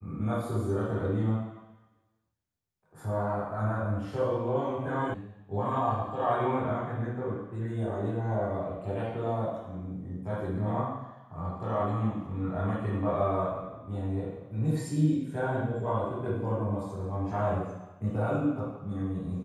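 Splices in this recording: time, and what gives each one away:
0:05.14: cut off before it has died away

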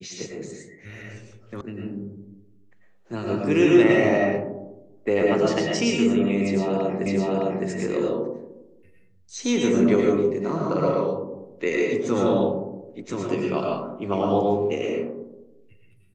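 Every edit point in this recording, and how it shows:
0:01.61: cut off before it has died away
0:07.06: the same again, the last 0.61 s

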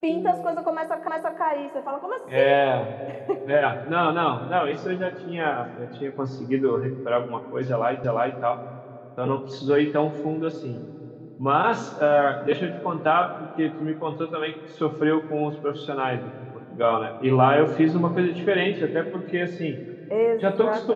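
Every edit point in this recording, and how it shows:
0:01.08: the same again, the last 0.34 s
0:08.04: the same again, the last 0.35 s

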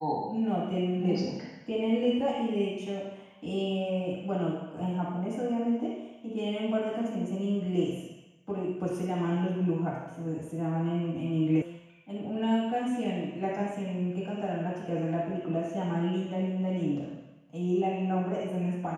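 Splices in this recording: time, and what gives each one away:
0:11.62: cut off before it has died away

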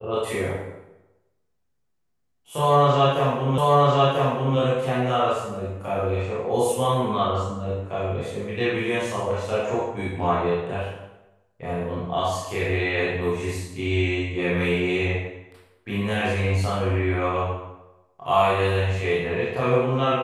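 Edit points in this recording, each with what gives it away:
0:03.58: the same again, the last 0.99 s

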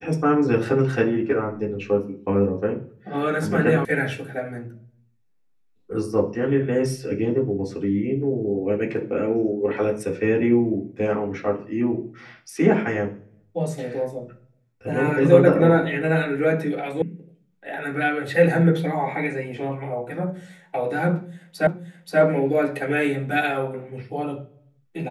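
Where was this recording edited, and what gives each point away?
0:03.85: cut off before it has died away
0:17.02: cut off before it has died away
0:21.67: the same again, the last 0.53 s

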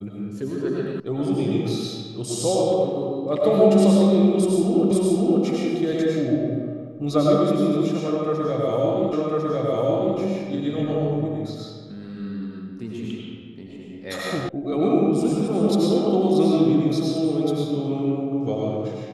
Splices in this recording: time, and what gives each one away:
0:01.00: cut off before it has died away
0:04.91: the same again, the last 0.53 s
0:09.13: the same again, the last 1.05 s
0:14.49: cut off before it has died away

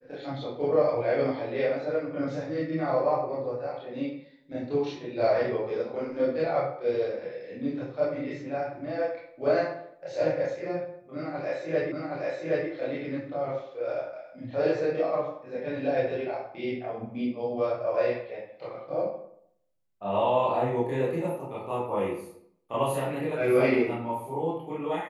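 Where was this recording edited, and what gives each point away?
0:11.92: the same again, the last 0.77 s

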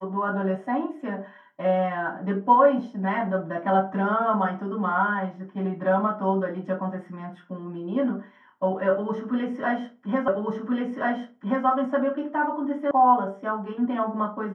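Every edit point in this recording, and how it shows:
0:10.28: the same again, the last 1.38 s
0:12.91: cut off before it has died away

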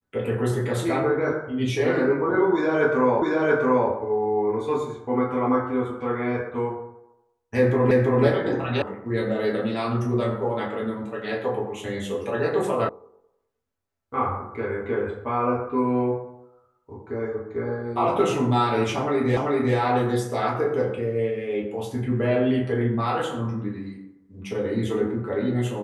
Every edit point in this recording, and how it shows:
0:03.22: the same again, the last 0.68 s
0:07.91: the same again, the last 0.33 s
0:08.82: cut off before it has died away
0:12.89: cut off before it has died away
0:19.37: the same again, the last 0.39 s

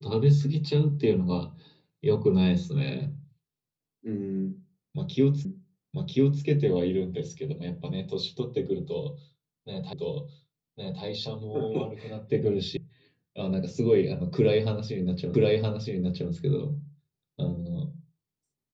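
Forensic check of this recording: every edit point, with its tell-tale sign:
0:05.45: the same again, the last 0.99 s
0:09.93: the same again, the last 1.11 s
0:12.77: cut off before it has died away
0:15.34: the same again, the last 0.97 s

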